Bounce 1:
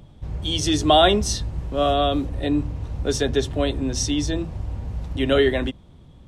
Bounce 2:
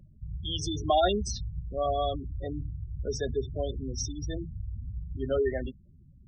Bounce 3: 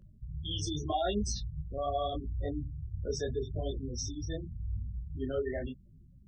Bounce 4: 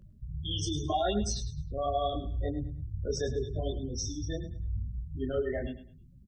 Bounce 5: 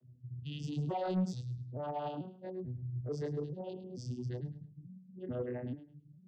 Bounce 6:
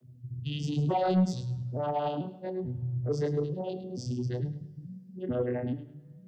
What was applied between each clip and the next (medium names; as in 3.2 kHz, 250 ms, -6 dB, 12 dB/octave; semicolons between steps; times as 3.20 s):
spectral gate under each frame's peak -15 dB strong; peaking EQ 290 Hz -10.5 dB 0.26 oct; trim -7.5 dB
peak limiter -22.5 dBFS, peak gain reduction 9 dB; detune thickener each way 29 cents; trim +2 dB
feedback delay 105 ms, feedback 27%, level -12.5 dB; trim +2 dB
vocoder on a broken chord minor triad, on B2, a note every 440 ms; saturation -25 dBFS, distortion -14 dB; trim -2 dB
hum notches 60/120 Hz; two-slope reverb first 0.69 s, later 3.1 s, from -18 dB, DRR 15 dB; trim +8 dB